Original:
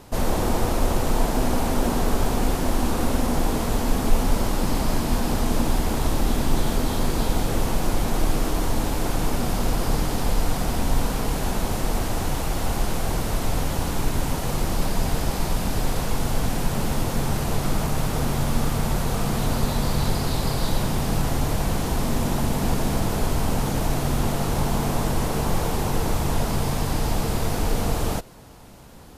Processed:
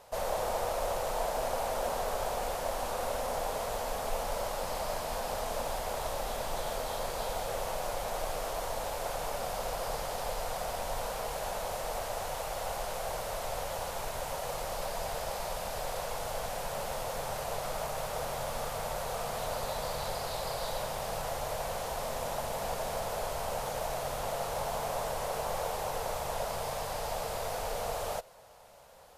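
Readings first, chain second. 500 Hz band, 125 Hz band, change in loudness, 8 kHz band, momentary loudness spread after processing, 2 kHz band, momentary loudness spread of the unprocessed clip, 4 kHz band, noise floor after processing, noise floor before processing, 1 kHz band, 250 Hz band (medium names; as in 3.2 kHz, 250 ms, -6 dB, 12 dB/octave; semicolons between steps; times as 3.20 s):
-5.0 dB, -20.5 dB, -10.0 dB, -8.5 dB, 3 LU, -8.0 dB, 2 LU, -8.5 dB, -38 dBFS, -27 dBFS, -5.0 dB, -23.5 dB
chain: resonant low shelf 410 Hz -11 dB, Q 3; trim -8.5 dB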